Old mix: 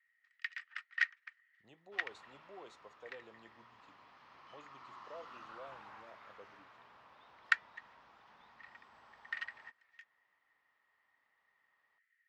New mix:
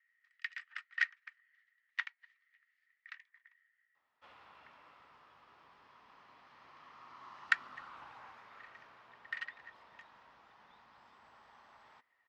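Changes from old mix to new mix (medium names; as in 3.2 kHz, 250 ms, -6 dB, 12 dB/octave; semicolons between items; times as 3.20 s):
speech: muted; second sound: entry +2.30 s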